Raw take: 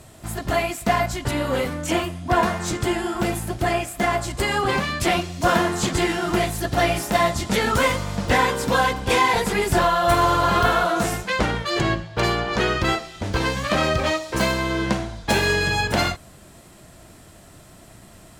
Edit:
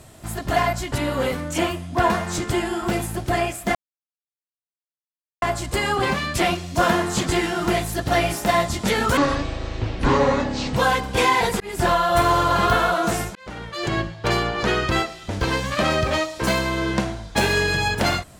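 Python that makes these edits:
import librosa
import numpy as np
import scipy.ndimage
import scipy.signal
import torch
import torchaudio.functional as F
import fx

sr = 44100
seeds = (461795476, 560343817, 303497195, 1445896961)

y = fx.edit(x, sr, fx.cut(start_s=0.56, length_s=0.33),
    fx.insert_silence(at_s=4.08, length_s=1.67),
    fx.speed_span(start_s=7.83, length_s=0.86, speed=0.54),
    fx.fade_in_span(start_s=9.53, length_s=0.28),
    fx.fade_in_span(start_s=11.28, length_s=0.75), tone=tone)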